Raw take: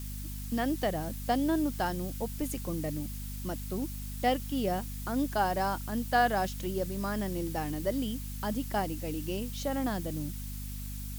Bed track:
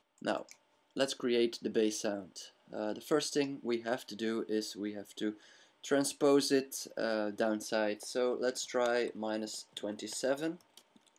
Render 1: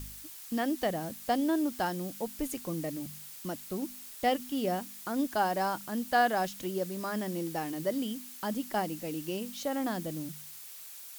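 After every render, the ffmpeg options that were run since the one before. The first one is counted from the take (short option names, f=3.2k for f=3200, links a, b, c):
-af "bandreject=f=50:t=h:w=4,bandreject=f=100:t=h:w=4,bandreject=f=150:t=h:w=4,bandreject=f=200:t=h:w=4,bandreject=f=250:t=h:w=4"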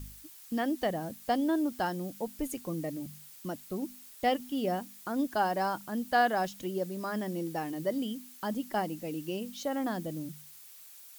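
-af "afftdn=nr=6:nf=-47"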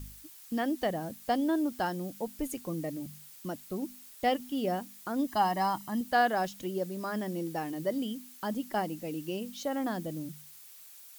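-filter_complex "[0:a]asettb=1/sr,asplit=3[a][b][c];[a]atrim=end=5.274[d];[b]atrim=start=5.27:end=6.01,asetpts=PTS-STARTPTS,afade=t=in:d=0.004:c=qsin,afade=t=out:st=0.736:d=0.004:c=qsin,aecho=1:1:1:0.65,atrim=end_sample=32634[e];[c]atrim=start=6.006[f];[d][e]acrossfade=d=0.004:c1=hsin:c2=qsin[g];[g][f]acrossfade=d=0.004:c1=qsin:c2=hsin"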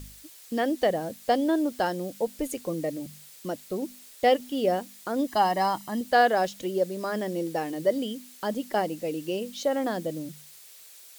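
-af "equalizer=f=500:t=o:w=1:g=10,equalizer=f=2k:t=o:w=1:g=4,equalizer=f=4k:t=o:w=1:g=5,equalizer=f=8k:t=o:w=1:g=4"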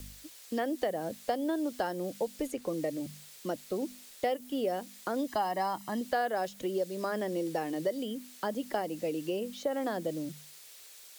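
-filter_complex "[0:a]acrossover=split=220|650|3500[a][b][c][d];[a]alimiter=level_in=17.5dB:limit=-24dB:level=0:latency=1,volume=-17.5dB[e];[e][b][c][d]amix=inputs=4:normalize=0,acrossover=split=2300|7400[f][g][h];[f]acompressor=threshold=-29dB:ratio=4[i];[g]acompressor=threshold=-51dB:ratio=4[j];[h]acompressor=threshold=-52dB:ratio=4[k];[i][j][k]amix=inputs=3:normalize=0"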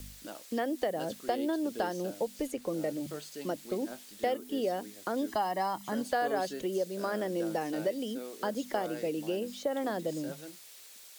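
-filter_complex "[1:a]volume=-11.5dB[a];[0:a][a]amix=inputs=2:normalize=0"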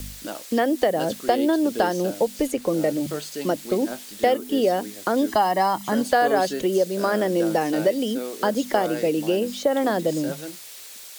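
-af "volume=11dB"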